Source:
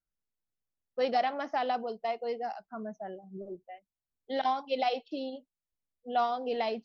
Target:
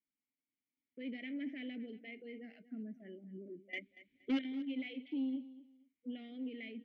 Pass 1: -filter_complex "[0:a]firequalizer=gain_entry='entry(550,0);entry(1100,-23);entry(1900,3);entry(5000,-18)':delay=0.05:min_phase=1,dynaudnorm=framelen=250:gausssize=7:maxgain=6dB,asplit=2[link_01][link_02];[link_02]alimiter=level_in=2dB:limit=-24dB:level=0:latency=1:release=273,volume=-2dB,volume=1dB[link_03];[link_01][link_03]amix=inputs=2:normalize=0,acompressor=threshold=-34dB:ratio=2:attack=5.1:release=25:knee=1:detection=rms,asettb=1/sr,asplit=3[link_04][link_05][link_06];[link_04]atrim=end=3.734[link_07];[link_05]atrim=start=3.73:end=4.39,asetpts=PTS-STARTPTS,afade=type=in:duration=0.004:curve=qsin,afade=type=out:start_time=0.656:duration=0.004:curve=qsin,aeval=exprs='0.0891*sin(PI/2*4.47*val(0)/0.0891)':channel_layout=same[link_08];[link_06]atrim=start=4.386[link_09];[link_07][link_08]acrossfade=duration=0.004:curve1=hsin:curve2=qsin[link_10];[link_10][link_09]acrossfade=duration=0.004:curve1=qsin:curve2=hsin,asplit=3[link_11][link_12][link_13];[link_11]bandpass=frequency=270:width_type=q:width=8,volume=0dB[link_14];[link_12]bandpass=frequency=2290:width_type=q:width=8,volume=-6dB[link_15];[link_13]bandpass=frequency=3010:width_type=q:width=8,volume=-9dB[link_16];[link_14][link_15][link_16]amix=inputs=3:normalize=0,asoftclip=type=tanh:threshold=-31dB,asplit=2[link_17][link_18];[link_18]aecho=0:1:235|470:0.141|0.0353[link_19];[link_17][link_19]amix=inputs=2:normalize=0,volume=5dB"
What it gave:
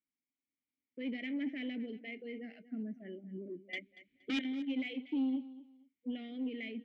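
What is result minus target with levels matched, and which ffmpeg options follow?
downward compressor: peak gain reduction −4.5 dB
-filter_complex "[0:a]firequalizer=gain_entry='entry(550,0);entry(1100,-23);entry(1900,3);entry(5000,-18)':delay=0.05:min_phase=1,dynaudnorm=framelen=250:gausssize=7:maxgain=6dB,asplit=2[link_01][link_02];[link_02]alimiter=level_in=2dB:limit=-24dB:level=0:latency=1:release=273,volume=-2dB,volume=1dB[link_03];[link_01][link_03]amix=inputs=2:normalize=0,acompressor=threshold=-43.5dB:ratio=2:attack=5.1:release=25:knee=1:detection=rms,asettb=1/sr,asplit=3[link_04][link_05][link_06];[link_04]atrim=end=3.734[link_07];[link_05]atrim=start=3.73:end=4.39,asetpts=PTS-STARTPTS,afade=type=in:duration=0.004:curve=qsin,afade=type=out:start_time=0.656:duration=0.004:curve=qsin,aeval=exprs='0.0891*sin(PI/2*4.47*val(0)/0.0891)':channel_layout=same[link_08];[link_06]atrim=start=4.386[link_09];[link_07][link_08]acrossfade=duration=0.004:curve1=hsin:curve2=qsin[link_10];[link_10][link_09]acrossfade=duration=0.004:curve1=qsin:curve2=hsin,asplit=3[link_11][link_12][link_13];[link_11]bandpass=frequency=270:width_type=q:width=8,volume=0dB[link_14];[link_12]bandpass=frequency=2290:width_type=q:width=8,volume=-6dB[link_15];[link_13]bandpass=frequency=3010:width_type=q:width=8,volume=-9dB[link_16];[link_14][link_15][link_16]amix=inputs=3:normalize=0,asoftclip=type=tanh:threshold=-31dB,asplit=2[link_17][link_18];[link_18]aecho=0:1:235|470:0.141|0.0353[link_19];[link_17][link_19]amix=inputs=2:normalize=0,volume=5dB"

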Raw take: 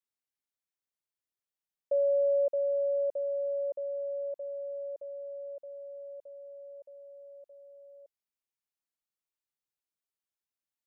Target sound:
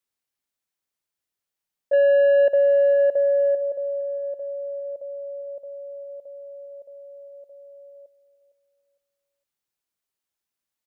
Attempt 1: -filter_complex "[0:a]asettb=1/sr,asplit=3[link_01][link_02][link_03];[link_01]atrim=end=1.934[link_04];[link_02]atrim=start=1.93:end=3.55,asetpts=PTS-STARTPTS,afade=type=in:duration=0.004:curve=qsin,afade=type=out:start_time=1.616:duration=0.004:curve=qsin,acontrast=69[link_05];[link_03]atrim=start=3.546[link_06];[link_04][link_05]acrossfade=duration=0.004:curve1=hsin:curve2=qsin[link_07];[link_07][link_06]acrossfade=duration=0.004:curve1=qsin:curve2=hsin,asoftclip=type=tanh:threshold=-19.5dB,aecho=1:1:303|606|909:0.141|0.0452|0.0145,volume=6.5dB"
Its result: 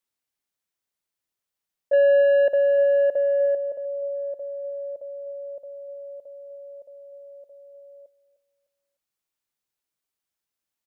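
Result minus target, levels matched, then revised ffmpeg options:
echo 155 ms early
-filter_complex "[0:a]asettb=1/sr,asplit=3[link_01][link_02][link_03];[link_01]atrim=end=1.934[link_04];[link_02]atrim=start=1.93:end=3.55,asetpts=PTS-STARTPTS,afade=type=in:duration=0.004:curve=qsin,afade=type=out:start_time=1.616:duration=0.004:curve=qsin,acontrast=69[link_05];[link_03]atrim=start=3.546[link_06];[link_04][link_05]acrossfade=duration=0.004:curve1=hsin:curve2=qsin[link_07];[link_07][link_06]acrossfade=duration=0.004:curve1=qsin:curve2=hsin,asoftclip=type=tanh:threshold=-19.5dB,aecho=1:1:458|916|1374:0.141|0.0452|0.0145,volume=6.5dB"

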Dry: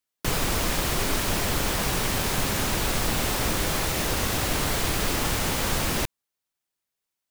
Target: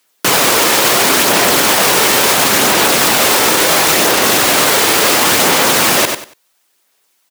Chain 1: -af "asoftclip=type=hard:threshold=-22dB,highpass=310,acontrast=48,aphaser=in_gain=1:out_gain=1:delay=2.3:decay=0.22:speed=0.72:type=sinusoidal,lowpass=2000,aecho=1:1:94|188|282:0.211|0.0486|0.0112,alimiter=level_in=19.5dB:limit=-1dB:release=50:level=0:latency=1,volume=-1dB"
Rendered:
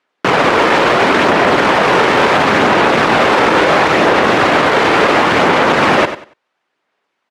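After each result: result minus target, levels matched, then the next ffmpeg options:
hard clipping: distortion +26 dB; 2,000 Hz band +2.5 dB
-af "asoftclip=type=hard:threshold=-14.5dB,highpass=310,acontrast=48,aphaser=in_gain=1:out_gain=1:delay=2.3:decay=0.22:speed=0.72:type=sinusoidal,lowpass=2000,aecho=1:1:94|188|282:0.211|0.0486|0.0112,alimiter=level_in=19.5dB:limit=-1dB:release=50:level=0:latency=1,volume=-1dB"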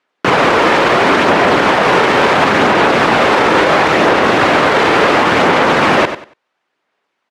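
2,000 Hz band +2.5 dB
-af "asoftclip=type=hard:threshold=-14.5dB,highpass=310,acontrast=48,aphaser=in_gain=1:out_gain=1:delay=2.3:decay=0.22:speed=0.72:type=sinusoidal,aecho=1:1:94|188|282:0.211|0.0486|0.0112,alimiter=level_in=19.5dB:limit=-1dB:release=50:level=0:latency=1,volume=-1dB"

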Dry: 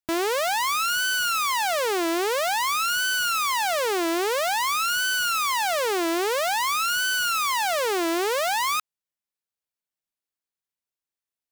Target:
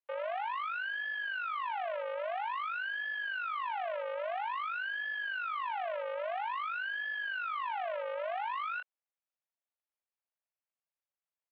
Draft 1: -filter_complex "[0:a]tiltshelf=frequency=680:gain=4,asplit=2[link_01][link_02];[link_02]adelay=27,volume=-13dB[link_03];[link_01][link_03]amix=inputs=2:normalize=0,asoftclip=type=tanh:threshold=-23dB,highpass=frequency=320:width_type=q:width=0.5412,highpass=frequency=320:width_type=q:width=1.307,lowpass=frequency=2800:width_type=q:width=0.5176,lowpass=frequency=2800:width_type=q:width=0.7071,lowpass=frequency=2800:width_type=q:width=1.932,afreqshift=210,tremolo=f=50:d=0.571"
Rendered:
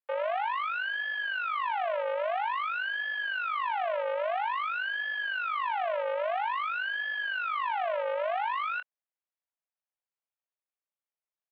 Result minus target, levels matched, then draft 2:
soft clipping: distortion −6 dB
-filter_complex "[0:a]tiltshelf=frequency=680:gain=4,asplit=2[link_01][link_02];[link_02]adelay=27,volume=-13dB[link_03];[link_01][link_03]amix=inputs=2:normalize=0,asoftclip=type=tanh:threshold=-31.5dB,highpass=frequency=320:width_type=q:width=0.5412,highpass=frequency=320:width_type=q:width=1.307,lowpass=frequency=2800:width_type=q:width=0.5176,lowpass=frequency=2800:width_type=q:width=0.7071,lowpass=frequency=2800:width_type=q:width=1.932,afreqshift=210,tremolo=f=50:d=0.571"

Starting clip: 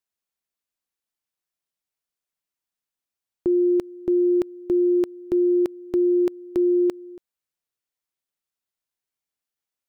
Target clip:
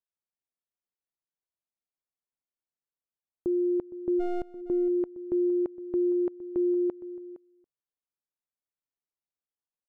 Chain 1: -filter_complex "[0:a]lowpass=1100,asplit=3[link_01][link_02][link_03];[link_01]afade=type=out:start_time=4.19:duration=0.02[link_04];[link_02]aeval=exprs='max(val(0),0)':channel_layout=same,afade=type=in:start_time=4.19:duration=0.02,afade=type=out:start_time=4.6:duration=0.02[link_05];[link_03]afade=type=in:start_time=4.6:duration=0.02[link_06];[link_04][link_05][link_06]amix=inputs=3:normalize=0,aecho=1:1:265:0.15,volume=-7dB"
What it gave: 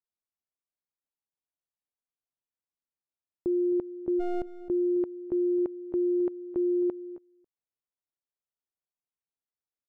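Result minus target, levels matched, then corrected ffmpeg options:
echo 198 ms early
-filter_complex "[0:a]lowpass=1100,asplit=3[link_01][link_02][link_03];[link_01]afade=type=out:start_time=4.19:duration=0.02[link_04];[link_02]aeval=exprs='max(val(0),0)':channel_layout=same,afade=type=in:start_time=4.19:duration=0.02,afade=type=out:start_time=4.6:duration=0.02[link_05];[link_03]afade=type=in:start_time=4.6:duration=0.02[link_06];[link_04][link_05][link_06]amix=inputs=3:normalize=0,aecho=1:1:463:0.15,volume=-7dB"

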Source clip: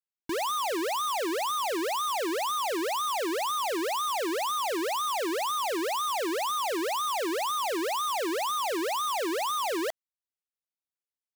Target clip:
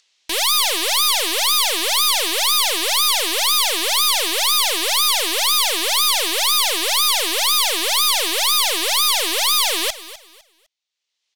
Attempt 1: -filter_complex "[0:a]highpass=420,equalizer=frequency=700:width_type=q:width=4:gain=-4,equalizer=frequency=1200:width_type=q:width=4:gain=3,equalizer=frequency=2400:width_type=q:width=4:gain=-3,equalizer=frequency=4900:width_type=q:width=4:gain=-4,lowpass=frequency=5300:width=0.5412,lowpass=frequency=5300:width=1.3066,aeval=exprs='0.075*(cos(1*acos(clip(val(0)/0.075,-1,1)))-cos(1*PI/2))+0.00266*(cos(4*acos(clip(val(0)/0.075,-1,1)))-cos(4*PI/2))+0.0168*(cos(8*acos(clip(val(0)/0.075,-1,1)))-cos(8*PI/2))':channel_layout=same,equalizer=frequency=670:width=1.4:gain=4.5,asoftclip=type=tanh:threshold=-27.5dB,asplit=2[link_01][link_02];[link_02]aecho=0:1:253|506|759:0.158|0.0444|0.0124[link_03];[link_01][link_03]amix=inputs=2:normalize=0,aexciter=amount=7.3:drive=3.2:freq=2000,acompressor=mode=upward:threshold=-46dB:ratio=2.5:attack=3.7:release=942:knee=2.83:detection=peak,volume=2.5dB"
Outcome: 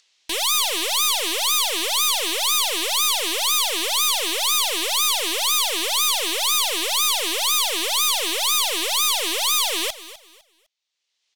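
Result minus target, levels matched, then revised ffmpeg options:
soft clipping: distortion +15 dB
-filter_complex "[0:a]highpass=420,equalizer=frequency=700:width_type=q:width=4:gain=-4,equalizer=frequency=1200:width_type=q:width=4:gain=3,equalizer=frequency=2400:width_type=q:width=4:gain=-3,equalizer=frequency=4900:width_type=q:width=4:gain=-4,lowpass=frequency=5300:width=0.5412,lowpass=frequency=5300:width=1.3066,aeval=exprs='0.075*(cos(1*acos(clip(val(0)/0.075,-1,1)))-cos(1*PI/2))+0.00266*(cos(4*acos(clip(val(0)/0.075,-1,1)))-cos(4*PI/2))+0.0168*(cos(8*acos(clip(val(0)/0.075,-1,1)))-cos(8*PI/2))':channel_layout=same,equalizer=frequency=670:width=1.4:gain=4.5,asoftclip=type=tanh:threshold=-17.5dB,asplit=2[link_01][link_02];[link_02]aecho=0:1:253|506|759:0.158|0.0444|0.0124[link_03];[link_01][link_03]amix=inputs=2:normalize=0,aexciter=amount=7.3:drive=3.2:freq=2000,acompressor=mode=upward:threshold=-46dB:ratio=2.5:attack=3.7:release=942:knee=2.83:detection=peak,volume=2.5dB"

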